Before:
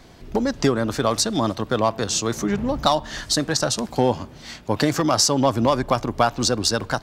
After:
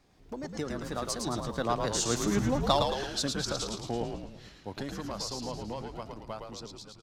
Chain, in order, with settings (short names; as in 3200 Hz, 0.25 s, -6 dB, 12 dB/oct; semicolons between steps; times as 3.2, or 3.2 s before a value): ending faded out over 0.62 s; Doppler pass-by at 2.36, 29 m/s, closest 17 m; frequency-shifting echo 0.11 s, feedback 54%, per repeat -85 Hz, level -4.5 dB; gain -6 dB